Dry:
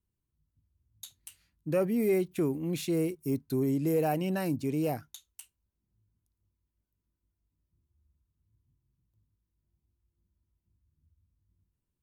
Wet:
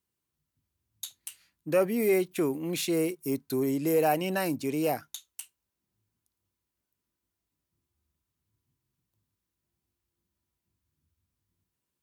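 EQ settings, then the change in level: HPF 540 Hz 6 dB/oct; +7.0 dB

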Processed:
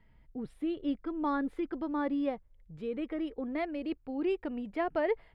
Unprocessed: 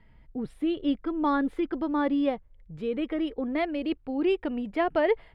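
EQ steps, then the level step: dynamic EQ 3200 Hz, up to -5 dB, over -53 dBFS, Q 3.1; -6.0 dB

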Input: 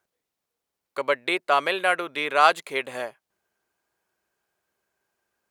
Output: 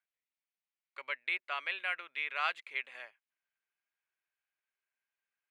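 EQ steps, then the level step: band-pass 2300 Hz, Q 2.2; -6.5 dB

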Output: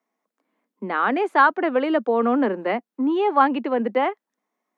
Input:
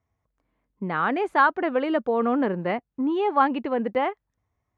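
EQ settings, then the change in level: steep high-pass 200 Hz 72 dB/oct; +3.0 dB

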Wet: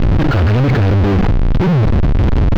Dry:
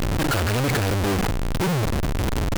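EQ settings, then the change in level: air absorption 240 m; low shelf 310 Hz +8.5 dB; high shelf 12000 Hz +8.5 dB; +4.5 dB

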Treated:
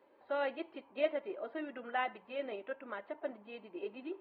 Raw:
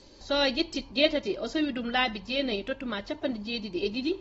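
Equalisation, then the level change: Gaussian blur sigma 4.5 samples; HPF 570 Hz 12 dB/oct; -3.5 dB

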